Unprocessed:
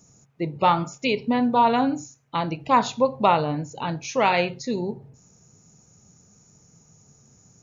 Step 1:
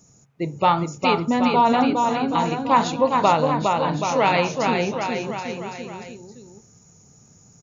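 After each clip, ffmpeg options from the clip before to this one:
-af "aecho=1:1:410|779|1111|1410|1679:0.631|0.398|0.251|0.158|0.1,volume=1dB"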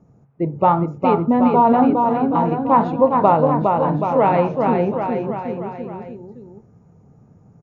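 -af "lowpass=1k,volume=5dB"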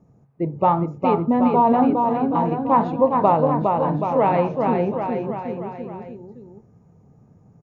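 -af "bandreject=f=1.4k:w=13,volume=-2.5dB"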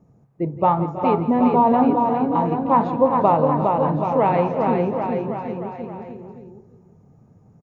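-af "aecho=1:1:167|323|350:0.168|0.15|0.2"

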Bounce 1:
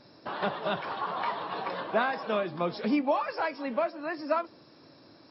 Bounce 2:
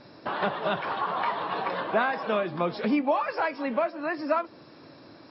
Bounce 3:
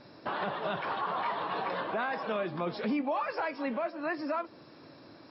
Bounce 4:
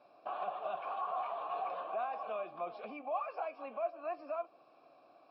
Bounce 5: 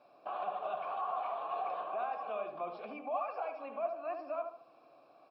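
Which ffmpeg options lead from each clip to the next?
-filter_complex "[0:a]lowpass=2.5k,aemphasis=mode=production:type=75fm,asplit=2[a][b];[b]acompressor=threshold=-35dB:ratio=6,volume=1dB[c];[a][c]amix=inputs=2:normalize=0"
-af "alimiter=limit=-21dB:level=0:latency=1:release=11,volume=-3dB"
-filter_complex "[0:a]asplit=3[a][b][c];[a]bandpass=f=730:t=q:w=8,volume=0dB[d];[b]bandpass=f=1.09k:t=q:w=8,volume=-6dB[e];[c]bandpass=f=2.44k:t=q:w=8,volume=-9dB[f];[d][e][f]amix=inputs=3:normalize=0,volume=2.5dB"
-filter_complex "[0:a]asplit=2[a][b];[b]adelay=74,lowpass=f=1.3k:p=1,volume=-4.5dB,asplit=2[c][d];[d]adelay=74,lowpass=f=1.3k:p=1,volume=0.41,asplit=2[e][f];[f]adelay=74,lowpass=f=1.3k:p=1,volume=0.41,asplit=2[g][h];[h]adelay=74,lowpass=f=1.3k:p=1,volume=0.41,asplit=2[i][j];[j]adelay=74,lowpass=f=1.3k:p=1,volume=0.41[k];[a][c][e][g][i][k]amix=inputs=6:normalize=0"

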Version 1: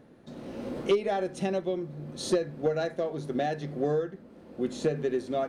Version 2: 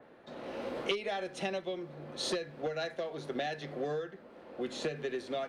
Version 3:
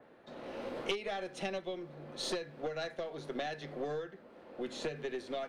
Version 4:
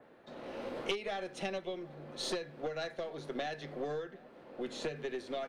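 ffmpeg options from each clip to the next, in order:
-filter_complex "[0:a]acrossover=split=450 3800:gain=0.178 1 0.2[a][b][c];[a][b][c]amix=inputs=3:normalize=0,acrossover=split=230|2100[d][e][f];[e]acompressor=threshold=-40dB:ratio=6[g];[d][g][f]amix=inputs=3:normalize=0,adynamicequalizer=threshold=0.00112:dfrequency=3700:dqfactor=0.7:tfrequency=3700:tqfactor=0.7:attack=5:release=100:ratio=0.375:range=2:mode=boostabove:tftype=highshelf,volume=5dB"
-af "aeval=exprs='(tanh(10*val(0)+0.55)-tanh(0.55))/10':c=same"
-filter_complex "[0:a]asplit=2[a][b];[b]adelay=758,volume=-23dB,highshelf=f=4k:g=-17.1[c];[a][c]amix=inputs=2:normalize=0"

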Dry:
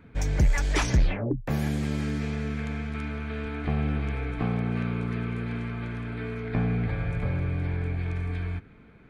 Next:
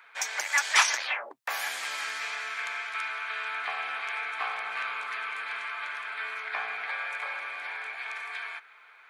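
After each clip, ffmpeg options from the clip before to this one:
-af "highpass=f=920:w=0.5412,highpass=f=920:w=1.3066,volume=8.5dB"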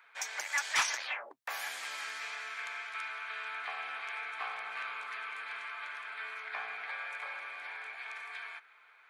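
-af "asoftclip=type=tanh:threshold=-12.5dB,volume=-6.5dB"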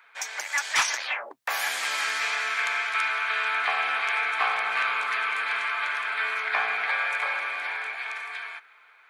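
-af "dynaudnorm=f=280:g=11:m=9dB,volume=5dB"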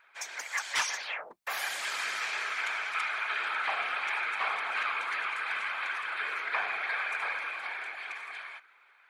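-af "afftfilt=real='hypot(re,im)*cos(2*PI*random(0))':imag='hypot(re,im)*sin(2*PI*random(1))':win_size=512:overlap=0.75"

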